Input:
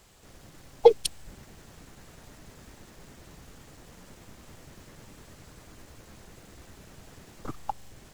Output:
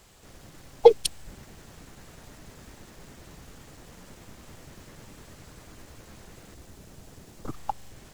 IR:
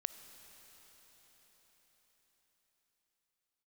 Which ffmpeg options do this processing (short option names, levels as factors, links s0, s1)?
-filter_complex "[0:a]asettb=1/sr,asplit=3[s0][s1][s2];[s0]atrim=end=6.544[s3];[s1]atrim=start=6.54:end=7.53,asetpts=PTS-STARTPTS,afade=t=in:d=0.004:c=qsin,afade=t=out:st=0.986:d=0.004:c=qsin,equalizer=f=1800:t=o:w=2.5:g=-5[s4];[s2]atrim=start=7.526[s5];[s3][s4]acrossfade=d=0.004:c1=hsin:c2=qsin[s6];[s6][s5]acrossfade=d=0.004:c1=qsin:c2=hsin,volume=1.26"